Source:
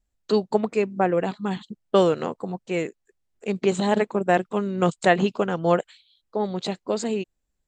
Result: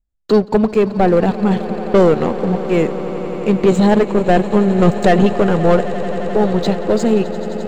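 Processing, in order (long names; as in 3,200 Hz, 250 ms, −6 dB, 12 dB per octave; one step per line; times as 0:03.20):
leveller curve on the samples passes 3
spectral tilt −2 dB per octave
on a send: echo that builds up and dies away 87 ms, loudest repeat 8, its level −18 dB
on the sum: level −2.5 dB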